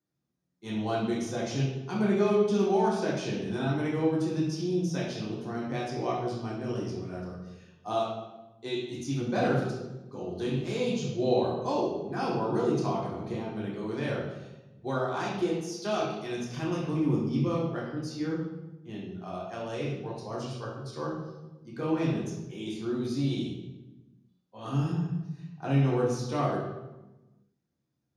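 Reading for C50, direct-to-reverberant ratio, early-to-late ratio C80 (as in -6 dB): 1.5 dB, -5.0 dB, 4.5 dB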